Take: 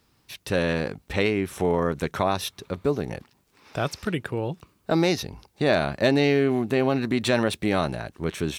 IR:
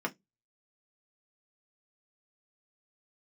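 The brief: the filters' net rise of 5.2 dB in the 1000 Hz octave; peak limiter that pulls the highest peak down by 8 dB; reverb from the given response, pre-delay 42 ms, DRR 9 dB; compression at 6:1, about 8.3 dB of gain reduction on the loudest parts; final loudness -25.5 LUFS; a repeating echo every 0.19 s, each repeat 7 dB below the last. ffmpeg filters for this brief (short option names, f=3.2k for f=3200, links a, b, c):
-filter_complex "[0:a]equalizer=f=1k:t=o:g=7,acompressor=threshold=-23dB:ratio=6,alimiter=limit=-17dB:level=0:latency=1,aecho=1:1:190|380|570|760|950:0.447|0.201|0.0905|0.0407|0.0183,asplit=2[a][b];[1:a]atrim=start_sample=2205,adelay=42[c];[b][c]afir=irnorm=-1:irlink=0,volume=-15dB[d];[a][d]amix=inputs=2:normalize=0,volume=3.5dB"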